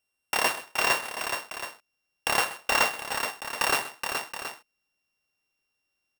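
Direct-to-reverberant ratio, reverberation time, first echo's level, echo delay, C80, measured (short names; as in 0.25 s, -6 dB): none, none, -16.5 dB, 0.128 s, none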